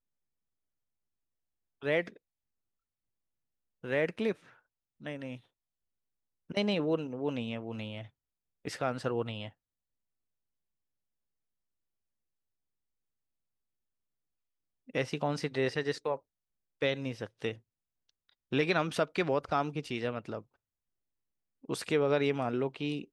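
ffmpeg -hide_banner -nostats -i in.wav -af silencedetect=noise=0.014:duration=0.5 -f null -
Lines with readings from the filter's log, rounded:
silence_start: 0.00
silence_end: 1.83 | silence_duration: 1.83
silence_start: 2.08
silence_end: 3.84 | silence_duration: 1.76
silence_start: 4.32
silence_end: 5.06 | silence_duration: 0.74
silence_start: 5.35
silence_end: 6.50 | silence_duration: 1.15
silence_start: 8.02
silence_end: 8.65 | silence_duration: 0.63
silence_start: 9.47
silence_end: 14.95 | silence_duration: 5.48
silence_start: 16.15
silence_end: 16.82 | silence_duration: 0.67
silence_start: 17.53
silence_end: 18.52 | silence_duration: 0.99
silence_start: 20.39
silence_end: 21.69 | silence_duration: 1.31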